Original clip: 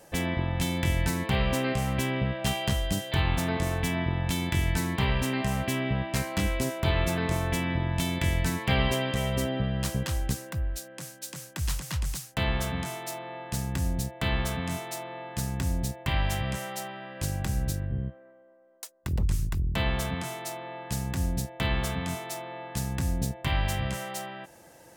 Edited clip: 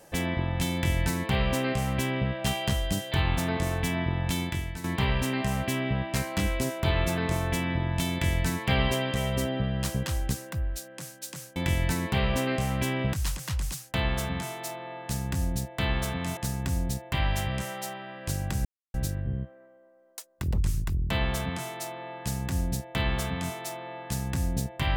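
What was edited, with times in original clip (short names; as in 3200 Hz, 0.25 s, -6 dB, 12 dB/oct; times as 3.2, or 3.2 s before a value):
0.73–2.3 copy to 11.56
4.41–4.84 fade out quadratic, to -11 dB
14.8–15.31 cut
17.59 insert silence 0.29 s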